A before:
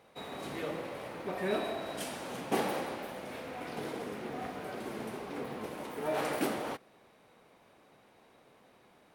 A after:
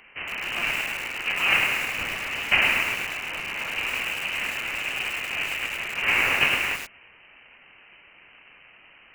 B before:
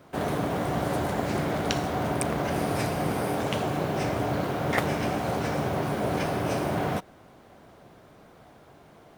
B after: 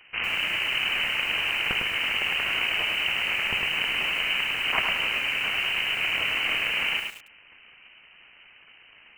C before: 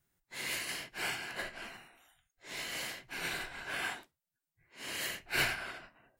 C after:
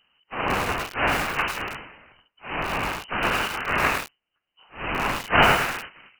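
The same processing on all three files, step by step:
cycle switcher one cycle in 2, inverted; inverted band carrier 3000 Hz; lo-fi delay 0.104 s, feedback 35%, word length 7-bit, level -4 dB; match loudness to -24 LUFS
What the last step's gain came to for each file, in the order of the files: +10.0, -0.5, +15.0 dB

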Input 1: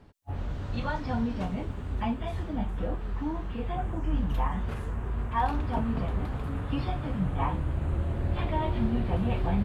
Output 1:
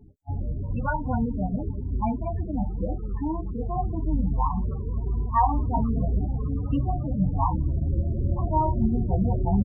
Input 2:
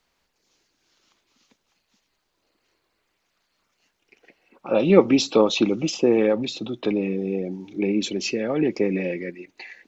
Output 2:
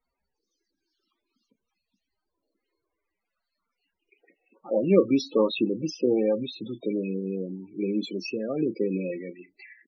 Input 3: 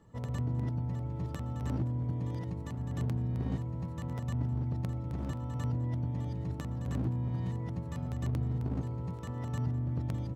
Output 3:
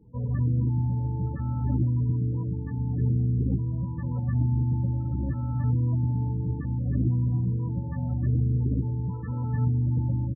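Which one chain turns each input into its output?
dynamic EQ 1100 Hz, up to +3 dB, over -40 dBFS, Q 2.1; early reflections 15 ms -15.5 dB, 32 ms -13 dB; loudest bins only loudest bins 16; match loudness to -27 LUFS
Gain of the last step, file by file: +4.5, -5.0, +6.5 dB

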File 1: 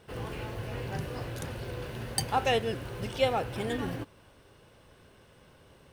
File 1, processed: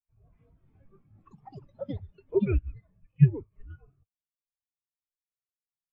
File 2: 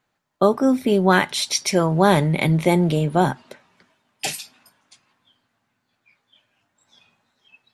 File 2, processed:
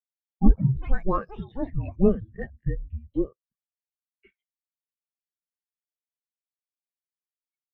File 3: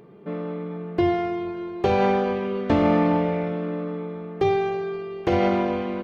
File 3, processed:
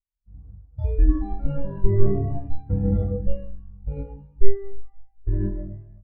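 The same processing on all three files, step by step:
bell 90 Hz -11.5 dB 2 oct; mistuned SSB -390 Hz 280–3600 Hz; echoes that change speed 0.146 s, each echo +6 st, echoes 3; spectral expander 2.5:1; match loudness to -27 LUFS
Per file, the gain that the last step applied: +7.5, +0.5, +7.5 dB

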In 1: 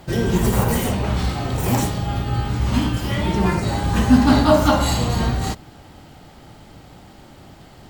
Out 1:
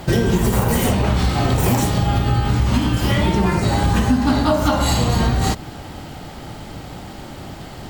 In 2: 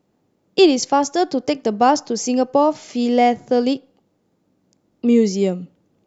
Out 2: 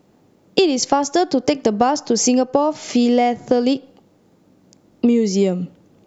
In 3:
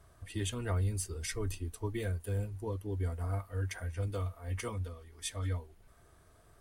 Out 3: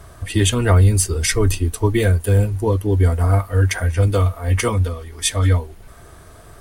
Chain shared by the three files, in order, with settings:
compressor 10:1, threshold -23 dBFS; match loudness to -18 LUFS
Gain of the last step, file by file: +10.0, +10.5, +19.5 dB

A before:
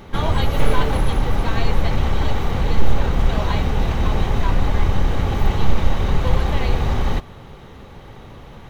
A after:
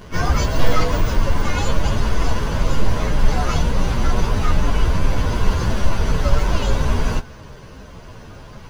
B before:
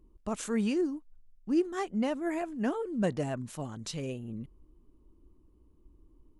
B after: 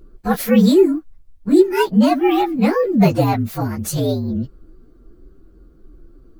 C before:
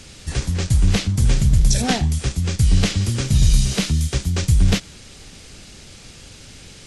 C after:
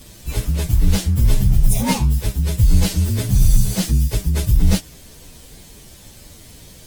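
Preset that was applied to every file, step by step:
inharmonic rescaling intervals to 117%; normalise peaks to -1.5 dBFS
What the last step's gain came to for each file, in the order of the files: +5.0, +18.5, +4.0 dB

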